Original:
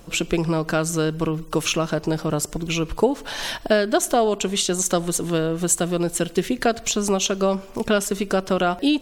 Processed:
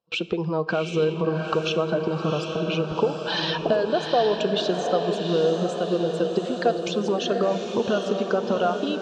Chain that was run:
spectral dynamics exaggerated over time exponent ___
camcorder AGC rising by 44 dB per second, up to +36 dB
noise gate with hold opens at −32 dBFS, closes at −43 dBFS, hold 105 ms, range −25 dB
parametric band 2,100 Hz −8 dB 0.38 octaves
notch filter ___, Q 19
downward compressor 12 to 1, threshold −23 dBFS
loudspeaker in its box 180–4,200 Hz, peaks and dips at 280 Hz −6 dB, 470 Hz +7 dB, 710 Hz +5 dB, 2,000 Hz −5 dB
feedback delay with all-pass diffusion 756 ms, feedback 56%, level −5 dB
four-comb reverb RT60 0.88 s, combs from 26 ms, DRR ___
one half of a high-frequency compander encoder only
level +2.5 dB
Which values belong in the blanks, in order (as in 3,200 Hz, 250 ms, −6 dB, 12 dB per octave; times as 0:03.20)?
1.5, 2,000 Hz, 18 dB